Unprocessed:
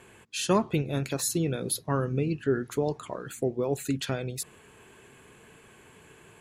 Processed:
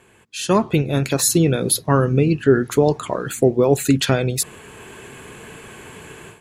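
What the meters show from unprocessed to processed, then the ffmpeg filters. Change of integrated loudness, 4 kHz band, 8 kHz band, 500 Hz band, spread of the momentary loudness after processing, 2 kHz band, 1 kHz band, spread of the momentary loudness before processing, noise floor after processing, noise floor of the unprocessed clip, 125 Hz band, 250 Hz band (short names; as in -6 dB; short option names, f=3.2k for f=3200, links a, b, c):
+11.5 dB, +10.0 dB, +11.5 dB, +11.5 dB, 13 LU, +11.0 dB, +10.0 dB, 10 LU, -53 dBFS, -55 dBFS, +11.5 dB, +11.0 dB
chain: -af "dynaudnorm=f=330:g=3:m=15dB"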